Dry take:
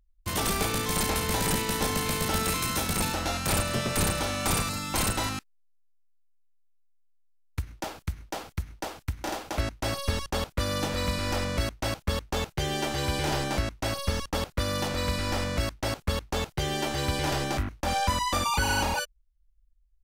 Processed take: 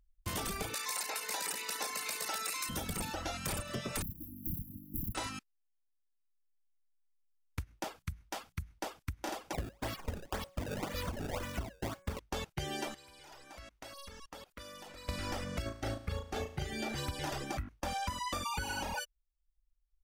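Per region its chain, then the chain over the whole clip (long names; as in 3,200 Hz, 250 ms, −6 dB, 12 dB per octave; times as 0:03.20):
0:00.74–0:02.69: high-pass filter 520 Hz + parametric band 4,500 Hz +5 dB 3 octaves + notch filter 3,200 Hz, Q 6
0:04.02–0:05.15: phase distortion by the signal itself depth 0.71 ms + linear-phase brick-wall band-stop 340–11,000 Hz
0:07.96–0:08.78: parametric band 420 Hz −6.5 dB 1.3 octaves + mains-hum notches 60/120/180 Hz
0:09.53–0:12.19: hum removal 185.8 Hz, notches 14 + sample-and-hold swept by an LFO 24×, swing 160% 1.9 Hz
0:12.94–0:15.09: parametric band 110 Hz −10.5 dB 2.4 octaves + downward compressor 4 to 1, threshold −43 dBFS
0:15.62–0:16.96: Butterworth band-reject 980 Hz, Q 5.9 + high-shelf EQ 4,600 Hz −6.5 dB + flutter between parallel walls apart 6.2 metres, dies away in 0.66 s
whole clip: notch filter 4,100 Hz, Q 22; reverb reduction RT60 1.8 s; downward compressor, threshold −31 dBFS; level −3 dB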